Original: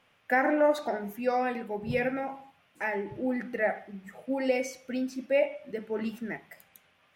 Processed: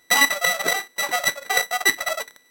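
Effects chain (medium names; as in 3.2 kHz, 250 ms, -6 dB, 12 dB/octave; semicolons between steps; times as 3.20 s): sorted samples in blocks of 64 samples; wide varispeed 2.86×; trim +8 dB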